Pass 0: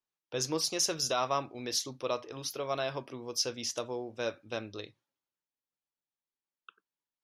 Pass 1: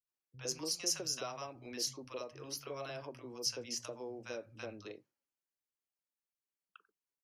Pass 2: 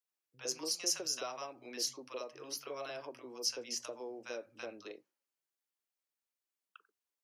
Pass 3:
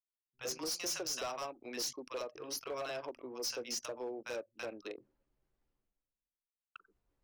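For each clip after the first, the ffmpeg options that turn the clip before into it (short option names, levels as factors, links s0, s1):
-filter_complex "[0:a]acrossover=split=130|3000[s0][s1][s2];[s1]acompressor=threshold=0.02:ratio=6[s3];[s0][s3][s2]amix=inputs=3:normalize=0,equalizer=f=3600:w=6.9:g=-14,acrossover=split=160|920[s4][s5][s6];[s6]adelay=70[s7];[s5]adelay=110[s8];[s4][s8][s7]amix=inputs=3:normalize=0,volume=0.631"
-af "highpass=280,volume=1.12"
-af "anlmdn=0.00251,areverse,acompressor=mode=upward:threshold=0.00224:ratio=2.5,areverse,asoftclip=type=hard:threshold=0.0126,volume=1.5"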